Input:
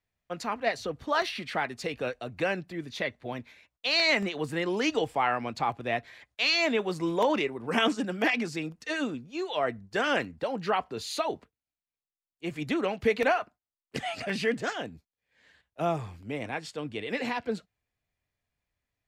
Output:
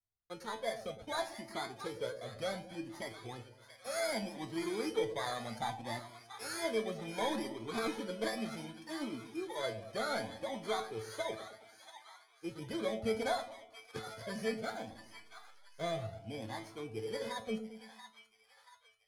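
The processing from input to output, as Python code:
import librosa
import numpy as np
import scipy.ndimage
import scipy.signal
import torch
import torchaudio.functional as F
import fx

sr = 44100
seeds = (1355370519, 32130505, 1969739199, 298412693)

p1 = fx.bit_reversed(x, sr, seeds[0], block=16)
p2 = scipy.signal.sosfilt(scipy.signal.butter(2, 5800.0, 'lowpass', fs=sr, output='sos'), p1)
p3 = fx.leveller(p2, sr, passes=1)
p4 = fx.comb_fb(p3, sr, f0_hz=110.0, decay_s=0.3, harmonics='all', damping=0.0, mix_pct=80)
p5 = fx.backlash(p4, sr, play_db=-45.0, at=(14.63, 15.93))
p6 = p5 + fx.echo_split(p5, sr, split_hz=850.0, low_ms=109, high_ms=682, feedback_pct=52, wet_db=-11, dry=0)
p7 = fx.comb_cascade(p6, sr, direction='rising', hz=0.66)
y = p7 * 10.0 ** (1.5 / 20.0)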